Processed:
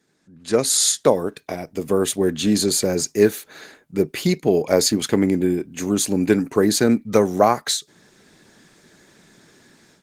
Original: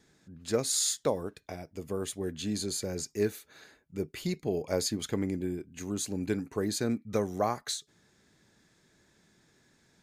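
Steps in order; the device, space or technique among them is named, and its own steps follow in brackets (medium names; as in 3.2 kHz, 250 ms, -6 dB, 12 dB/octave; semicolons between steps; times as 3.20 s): video call (high-pass 150 Hz 12 dB/octave; level rider gain up to 16 dB; Opus 20 kbps 48 kHz)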